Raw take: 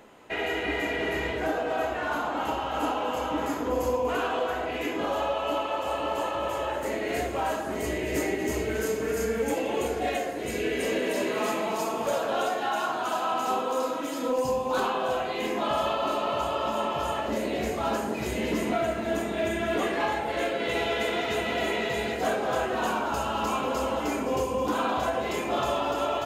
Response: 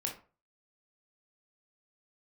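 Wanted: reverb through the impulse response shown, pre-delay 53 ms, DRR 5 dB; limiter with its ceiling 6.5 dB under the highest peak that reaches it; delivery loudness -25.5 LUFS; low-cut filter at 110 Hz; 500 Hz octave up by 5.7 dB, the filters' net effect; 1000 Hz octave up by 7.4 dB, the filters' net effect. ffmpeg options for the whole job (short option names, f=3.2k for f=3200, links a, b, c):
-filter_complex "[0:a]highpass=110,equalizer=f=500:t=o:g=4.5,equalizer=f=1k:t=o:g=8,alimiter=limit=-16.5dB:level=0:latency=1,asplit=2[a][b];[1:a]atrim=start_sample=2205,adelay=53[c];[b][c]afir=irnorm=-1:irlink=0,volume=-6.5dB[d];[a][d]amix=inputs=2:normalize=0,volume=-1.5dB"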